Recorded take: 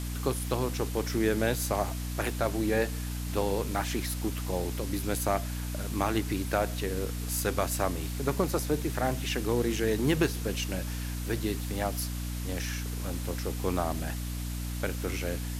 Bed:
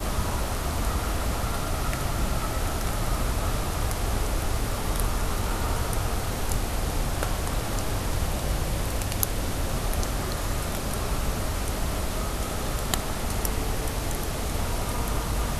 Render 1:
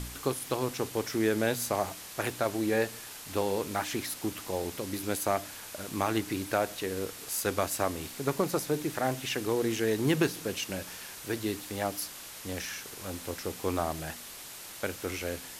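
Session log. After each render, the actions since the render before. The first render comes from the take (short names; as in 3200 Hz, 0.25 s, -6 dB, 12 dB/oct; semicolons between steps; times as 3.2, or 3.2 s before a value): de-hum 60 Hz, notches 5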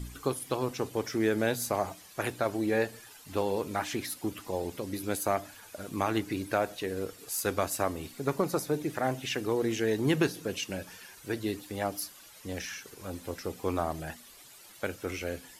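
denoiser 12 dB, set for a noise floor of -45 dBFS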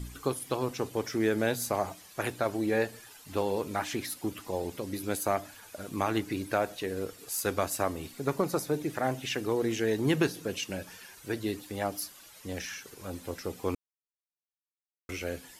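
13.75–15.09 mute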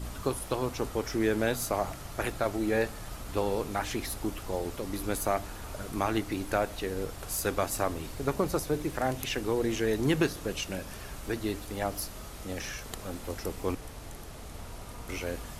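add bed -15 dB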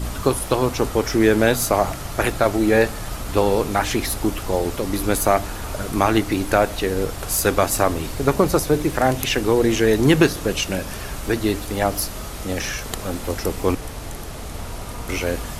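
gain +11.5 dB; limiter -2 dBFS, peak gain reduction 1 dB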